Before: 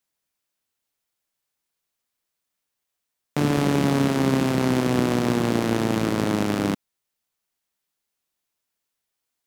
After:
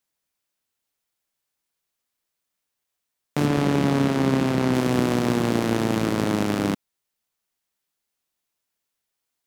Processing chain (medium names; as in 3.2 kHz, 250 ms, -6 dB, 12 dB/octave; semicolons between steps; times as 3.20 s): 3.46–4.74 s: treble shelf 6.2 kHz -6.5 dB